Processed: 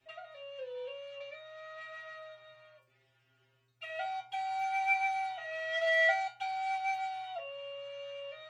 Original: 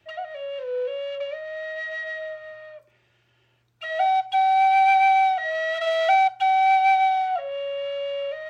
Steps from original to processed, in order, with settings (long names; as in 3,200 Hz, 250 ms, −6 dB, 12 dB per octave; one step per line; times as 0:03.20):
stiff-string resonator 130 Hz, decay 0.44 s, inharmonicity 0.002
level +5.5 dB